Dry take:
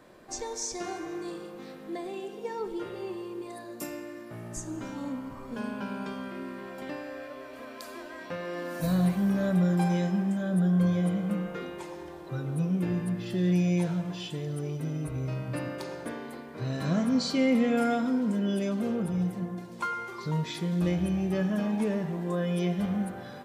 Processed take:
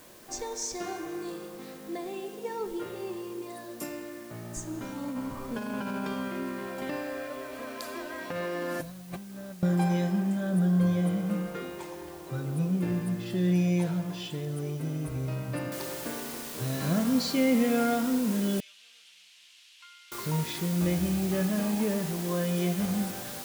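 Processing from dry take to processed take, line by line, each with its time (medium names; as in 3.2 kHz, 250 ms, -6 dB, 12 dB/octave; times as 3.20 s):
5.07–9.63 s: compressor with a negative ratio -36 dBFS
15.72 s: noise floor step -55 dB -41 dB
18.60–20.12 s: ladder band-pass 3.4 kHz, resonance 50%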